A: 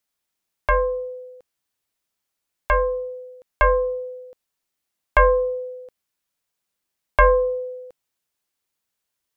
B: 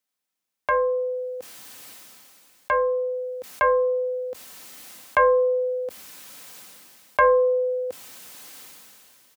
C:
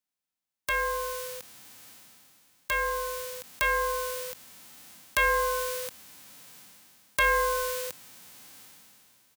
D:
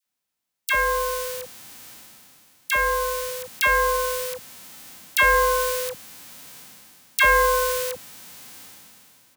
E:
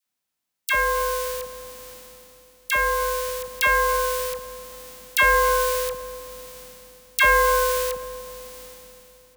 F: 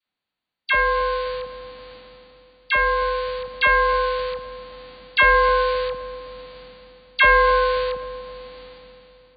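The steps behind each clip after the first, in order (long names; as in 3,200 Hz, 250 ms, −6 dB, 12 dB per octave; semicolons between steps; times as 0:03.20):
high-pass filter 95 Hz 24 dB per octave; comb filter 3.9 ms, depth 33%; level that may fall only so fast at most 21 dB per second; level −3.5 dB
spectral envelope flattened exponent 0.1; level −6.5 dB
all-pass dispersion lows, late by 61 ms, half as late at 1,000 Hz; level +7 dB
feedback echo with a low-pass in the loop 262 ms, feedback 65%, low-pass 1,100 Hz, level −13 dB
linear-phase brick-wall low-pass 4,700 Hz; level +2.5 dB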